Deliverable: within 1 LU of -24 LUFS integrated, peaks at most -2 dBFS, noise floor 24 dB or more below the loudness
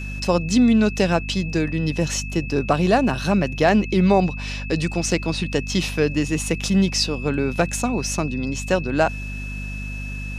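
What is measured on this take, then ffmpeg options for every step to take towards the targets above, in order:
hum 50 Hz; harmonics up to 250 Hz; hum level -28 dBFS; steady tone 2600 Hz; tone level -34 dBFS; loudness -21.5 LUFS; peak -3.5 dBFS; loudness target -24.0 LUFS
-> -af "bandreject=f=50:t=h:w=4,bandreject=f=100:t=h:w=4,bandreject=f=150:t=h:w=4,bandreject=f=200:t=h:w=4,bandreject=f=250:t=h:w=4"
-af "bandreject=f=2.6k:w=30"
-af "volume=-2.5dB"

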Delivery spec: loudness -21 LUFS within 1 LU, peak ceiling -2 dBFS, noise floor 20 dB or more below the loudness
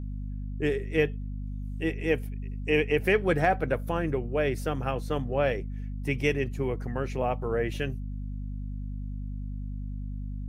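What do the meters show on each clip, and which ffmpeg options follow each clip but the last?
hum 50 Hz; harmonics up to 250 Hz; hum level -32 dBFS; loudness -30.0 LUFS; peak -11.0 dBFS; loudness target -21.0 LUFS
-> -af "bandreject=f=50:t=h:w=4,bandreject=f=100:t=h:w=4,bandreject=f=150:t=h:w=4,bandreject=f=200:t=h:w=4,bandreject=f=250:t=h:w=4"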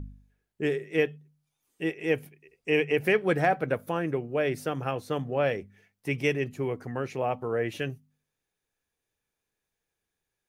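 hum none; loudness -29.0 LUFS; peak -11.5 dBFS; loudness target -21.0 LUFS
-> -af "volume=8dB"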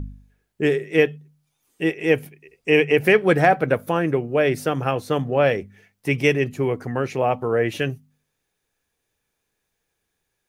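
loudness -21.0 LUFS; peak -3.5 dBFS; noise floor -77 dBFS

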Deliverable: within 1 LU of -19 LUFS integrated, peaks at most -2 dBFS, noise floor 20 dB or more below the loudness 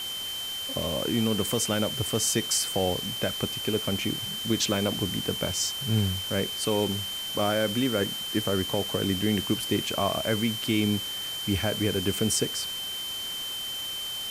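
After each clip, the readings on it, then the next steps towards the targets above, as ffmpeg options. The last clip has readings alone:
steady tone 3100 Hz; tone level -32 dBFS; noise floor -34 dBFS; noise floor target -47 dBFS; loudness -27.0 LUFS; peak -11.5 dBFS; loudness target -19.0 LUFS
-> -af "bandreject=f=3.1k:w=30"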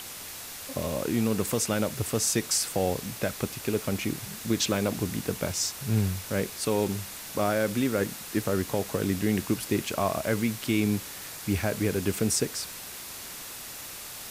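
steady tone none; noise floor -41 dBFS; noise floor target -49 dBFS
-> -af "afftdn=nr=8:nf=-41"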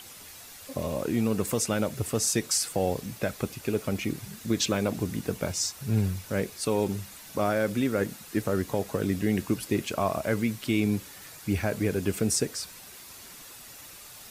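noise floor -47 dBFS; noise floor target -49 dBFS
-> -af "afftdn=nr=6:nf=-47"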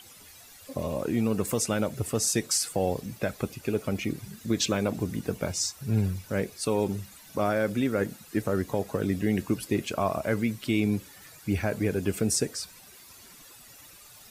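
noise floor -51 dBFS; loudness -29.0 LUFS; peak -12.5 dBFS; loudness target -19.0 LUFS
-> -af "volume=10dB"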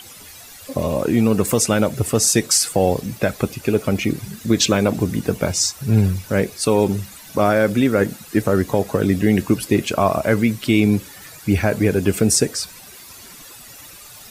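loudness -19.0 LUFS; peak -2.5 dBFS; noise floor -41 dBFS

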